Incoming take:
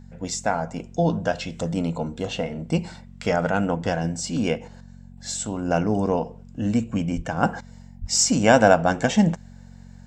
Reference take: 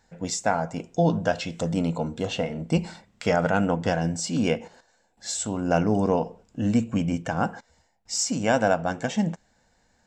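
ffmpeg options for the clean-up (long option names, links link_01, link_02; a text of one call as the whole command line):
ffmpeg -i in.wav -filter_complex "[0:a]bandreject=frequency=45.9:width_type=h:width=4,bandreject=frequency=91.8:width_type=h:width=4,bandreject=frequency=137.7:width_type=h:width=4,bandreject=frequency=183.6:width_type=h:width=4,bandreject=frequency=229.5:width_type=h:width=4,asplit=3[link_01][link_02][link_03];[link_01]afade=type=out:start_time=7.15:duration=0.02[link_04];[link_02]highpass=frequency=140:width=0.5412,highpass=frequency=140:width=1.3066,afade=type=in:start_time=7.15:duration=0.02,afade=type=out:start_time=7.27:duration=0.02[link_05];[link_03]afade=type=in:start_time=7.27:duration=0.02[link_06];[link_04][link_05][link_06]amix=inputs=3:normalize=0,asplit=3[link_07][link_08][link_09];[link_07]afade=type=out:start_time=8:duration=0.02[link_10];[link_08]highpass=frequency=140:width=0.5412,highpass=frequency=140:width=1.3066,afade=type=in:start_time=8:duration=0.02,afade=type=out:start_time=8.12:duration=0.02[link_11];[link_09]afade=type=in:start_time=8.12:duration=0.02[link_12];[link_10][link_11][link_12]amix=inputs=3:normalize=0,asetnsamples=nb_out_samples=441:pad=0,asendcmd='7.43 volume volume -6.5dB',volume=0dB" out.wav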